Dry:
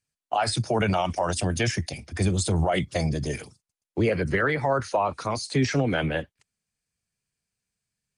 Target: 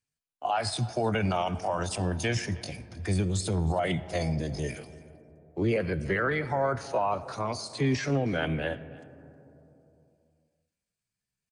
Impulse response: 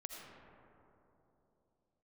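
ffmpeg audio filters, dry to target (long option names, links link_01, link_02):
-filter_complex "[0:a]atempo=0.71,aecho=1:1:315:0.0794,asplit=2[link_01][link_02];[1:a]atrim=start_sample=2205,lowpass=6900[link_03];[link_02][link_03]afir=irnorm=-1:irlink=0,volume=-8.5dB[link_04];[link_01][link_04]amix=inputs=2:normalize=0,volume=-5.5dB"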